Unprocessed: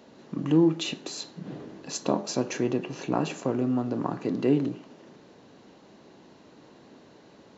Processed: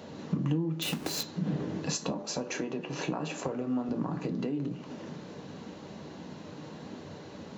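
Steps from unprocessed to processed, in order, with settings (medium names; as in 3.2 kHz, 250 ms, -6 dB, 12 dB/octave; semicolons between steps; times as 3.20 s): 0.82–1.23 s: square wave that keeps the level; 2.23–3.89 s: tone controls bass -9 dB, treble -2 dB; in parallel at -1.5 dB: peak limiter -21.5 dBFS, peak gain reduction 11 dB; on the sum: compression 10:1, threshold -32 dBFS, peak gain reduction 18.5 dB; flange 0.84 Hz, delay 1.3 ms, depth 5.8 ms, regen -67%; on a send at -9.5 dB: reverberation RT60 0.20 s, pre-delay 3 ms; on the sum: trim +5.5 dB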